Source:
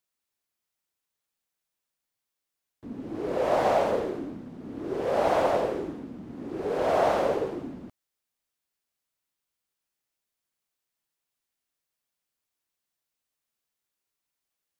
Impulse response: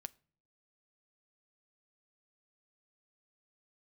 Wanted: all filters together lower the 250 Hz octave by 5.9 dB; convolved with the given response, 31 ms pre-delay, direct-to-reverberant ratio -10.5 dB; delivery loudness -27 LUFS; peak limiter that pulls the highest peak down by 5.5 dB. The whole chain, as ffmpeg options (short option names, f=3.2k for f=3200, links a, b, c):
-filter_complex "[0:a]equalizer=f=250:t=o:g=-8.5,alimiter=limit=-18.5dB:level=0:latency=1,asplit=2[a][b];[1:a]atrim=start_sample=2205,adelay=31[c];[b][c]afir=irnorm=-1:irlink=0,volume=15dB[d];[a][d]amix=inputs=2:normalize=0,volume=-7.5dB"